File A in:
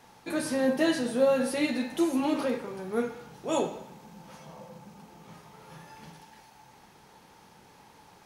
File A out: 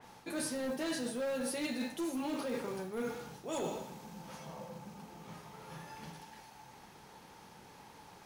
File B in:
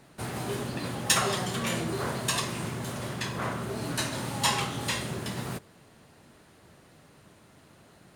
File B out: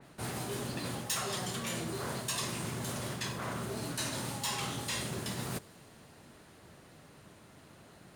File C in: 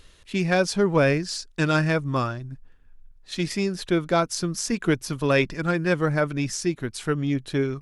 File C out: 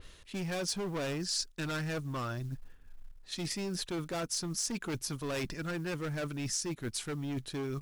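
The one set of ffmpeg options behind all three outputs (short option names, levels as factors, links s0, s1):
-af "volume=13.3,asoftclip=hard,volume=0.075,areverse,acompressor=threshold=0.02:ratio=12,areverse,acrusher=bits=8:mode=log:mix=0:aa=0.000001,adynamicequalizer=threshold=0.00251:dfrequency=3600:dqfactor=0.7:tfrequency=3600:tqfactor=0.7:attack=5:release=100:ratio=0.375:range=2.5:mode=boostabove:tftype=highshelf"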